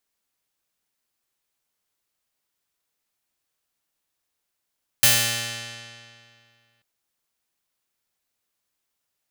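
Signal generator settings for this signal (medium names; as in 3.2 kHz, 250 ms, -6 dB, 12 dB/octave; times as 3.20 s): plucked string A#2, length 1.79 s, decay 2.29 s, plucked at 0.36, bright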